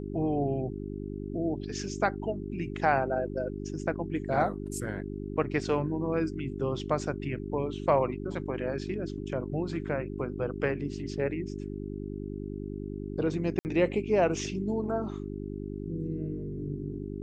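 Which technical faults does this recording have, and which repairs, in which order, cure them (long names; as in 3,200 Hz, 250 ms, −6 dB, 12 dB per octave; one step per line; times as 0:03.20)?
mains hum 50 Hz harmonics 8 −37 dBFS
0:13.59–0:13.65: drop-out 59 ms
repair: hum removal 50 Hz, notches 8
repair the gap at 0:13.59, 59 ms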